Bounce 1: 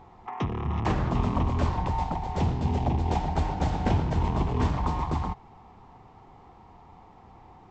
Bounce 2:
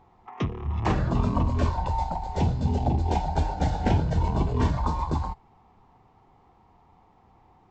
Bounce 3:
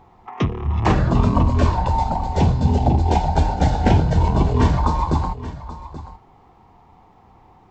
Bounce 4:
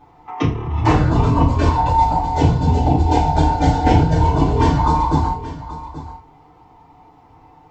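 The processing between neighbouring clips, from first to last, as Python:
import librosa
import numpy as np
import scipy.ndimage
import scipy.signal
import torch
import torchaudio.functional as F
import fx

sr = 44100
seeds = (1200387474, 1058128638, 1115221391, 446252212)

y1 = fx.noise_reduce_blind(x, sr, reduce_db=9)
y1 = F.gain(torch.from_numpy(y1), 2.0).numpy()
y2 = y1 + 10.0 ** (-15.0 / 20.0) * np.pad(y1, (int(830 * sr / 1000.0), 0))[:len(y1)]
y2 = F.gain(torch.from_numpy(y2), 7.5).numpy()
y3 = fx.rev_fdn(y2, sr, rt60_s=0.32, lf_ratio=0.95, hf_ratio=0.95, size_ms=20.0, drr_db=-6.5)
y3 = F.gain(torch.from_numpy(y3), -5.0).numpy()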